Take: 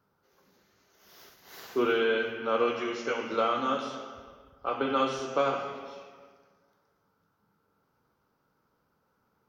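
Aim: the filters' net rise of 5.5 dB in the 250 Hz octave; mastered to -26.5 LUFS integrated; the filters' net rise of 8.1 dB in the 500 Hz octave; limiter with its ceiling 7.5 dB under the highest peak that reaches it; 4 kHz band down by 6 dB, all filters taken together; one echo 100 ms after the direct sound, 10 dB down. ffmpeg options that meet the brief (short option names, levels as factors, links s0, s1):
-af "equalizer=f=250:t=o:g=3.5,equalizer=f=500:t=o:g=8.5,equalizer=f=4000:t=o:g=-9,alimiter=limit=0.178:level=0:latency=1,aecho=1:1:100:0.316,volume=0.944"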